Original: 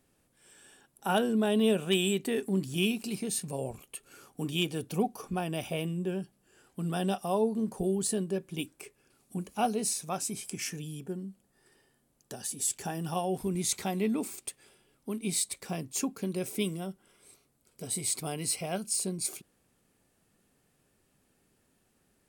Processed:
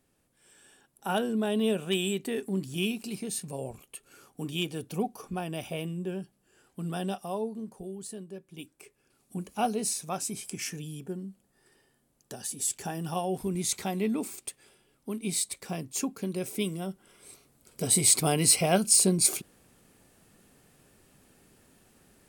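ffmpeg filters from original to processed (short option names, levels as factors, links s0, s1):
-af "volume=8.91,afade=t=out:st=6.92:d=0.9:silence=0.354813,afade=t=in:st=8.48:d=1.01:silence=0.281838,afade=t=in:st=16.7:d=1.15:silence=0.334965"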